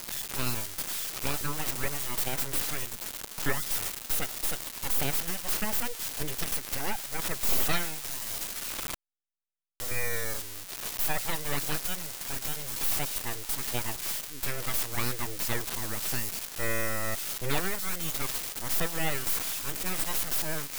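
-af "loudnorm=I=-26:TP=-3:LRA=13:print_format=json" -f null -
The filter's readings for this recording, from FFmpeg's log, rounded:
"input_i" : "-30.6",
"input_tp" : "-10.1",
"input_lra" : "1.8",
"input_thresh" : "-40.6",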